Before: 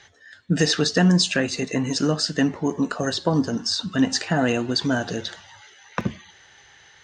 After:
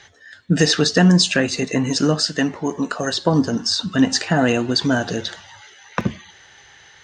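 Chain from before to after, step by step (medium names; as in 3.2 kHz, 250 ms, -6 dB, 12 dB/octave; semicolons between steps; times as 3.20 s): 2.23–3.26 s: bass shelf 380 Hz -6 dB; trim +4 dB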